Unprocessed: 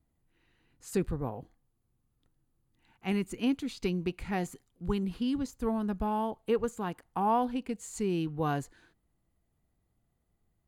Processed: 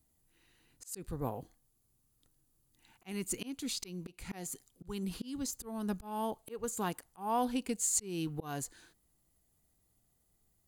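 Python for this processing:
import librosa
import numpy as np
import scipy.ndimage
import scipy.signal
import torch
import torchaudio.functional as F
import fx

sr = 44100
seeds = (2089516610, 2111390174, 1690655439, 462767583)

y = fx.auto_swell(x, sr, attack_ms=319.0)
y = fx.bass_treble(y, sr, bass_db=-2, treble_db=14)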